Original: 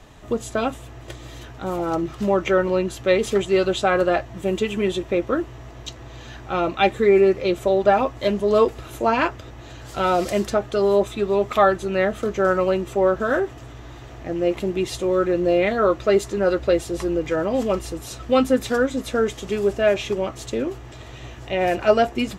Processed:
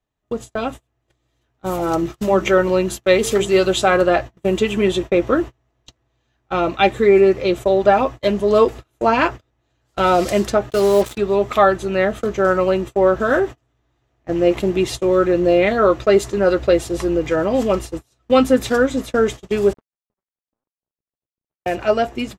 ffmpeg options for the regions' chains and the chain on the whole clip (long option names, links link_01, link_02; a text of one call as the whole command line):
ffmpeg -i in.wav -filter_complex "[0:a]asettb=1/sr,asplit=3[link_01][link_02][link_03];[link_01]atrim=end=1.644[link_04];[link_02]atrim=start=1.64:end=3.97,asetpts=PTS-STARTPTS,afade=type=in:duration=0.004:curve=qsin,afade=type=out:start_time=2.326:duration=0.004:curve=qsin,highshelf=frequency=6900:gain=10,bandreject=frequency=50.14:width_type=h:width=4,bandreject=frequency=100.28:width_type=h:width=4,bandreject=frequency=150.42:width_type=h:width=4,bandreject=frequency=200.56:width_type=h:width=4,bandreject=frequency=250.7:width_type=h:width=4,bandreject=frequency=300.84:width_type=h:width=4,bandreject=frequency=350.98:width_type=h:width=4,bandreject=frequency=401.12:width_type=h:width=4,bandreject=frequency=451.26:width_type=h:width=4[link_05];[link_03]atrim=start=3.966[link_06];[link_04][link_05]acrossfade=duration=0.004:curve1=hsin:curve2=qsin[link_07];[link_07][link_06]acrossfade=duration=0.004:curve1=qsin:curve2=hsin,asettb=1/sr,asplit=3[link_08][link_09][link_10];[link_08]atrim=end=10.704[link_11];[link_09]atrim=start=10.7:end=11.18,asetpts=PTS-STARTPTS,afade=type=in:duration=0.004:curve=qsin,afade=type=out:start_time=0.476:duration=0.004:curve=qsin,highshelf=frequency=9000:gain=4.5,acrusher=bits=4:mix=0:aa=0.5[link_12];[link_10]atrim=start=11.176[link_13];[link_11][link_12]acrossfade=duration=0.004:curve1=hsin:curve2=qsin[link_14];[link_14][link_13]acrossfade=duration=0.004:curve1=qsin:curve2=hsin,asettb=1/sr,asplit=3[link_15][link_16][link_17];[link_15]atrim=end=19.734[link_18];[link_16]atrim=start=19.73:end=21.66,asetpts=PTS-STARTPTS,afade=type=in:duration=0.004:curve=qsin,afade=type=out:start_time=1.926:duration=0.004:curve=qsin,acompressor=threshold=-35dB:ratio=5:attack=3.2:release=140:knee=1:detection=peak,bandpass=frequency=150:width_type=q:width=0.92,aeval=exprs='sgn(val(0))*max(abs(val(0))-0.0119,0)':channel_layout=same[link_19];[link_17]atrim=start=21.656[link_20];[link_18][link_19]acrossfade=duration=0.004:curve1=hsin:curve2=qsin[link_21];[link_21][link_20]acrossfade=duration=0.004:curve1=qsin:curve2=hsin,agate=range=-33dB:threshold=-29dB:ratio=16:detection=peak,dynaudnorm=framelen=270:gausssize=9:maxgain=11.5dB,volume=-1dB" out.wav